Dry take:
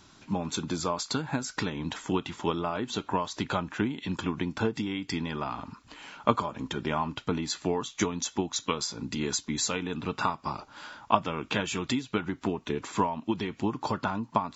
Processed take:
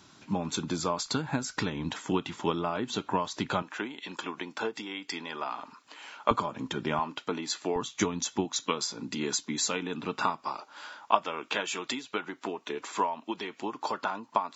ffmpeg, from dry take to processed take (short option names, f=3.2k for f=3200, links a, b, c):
-af "asetnsamples=n=441:p=0,asendcmd='1.06 highpass f 43;1.89 highpass f 110;3.62 highpass f 450;6.31 highpass f 120;6.99 highpass f 310;7.76 highpass f 95;8.45 highpass f 200;10.42 highpass f 420',highpass=97"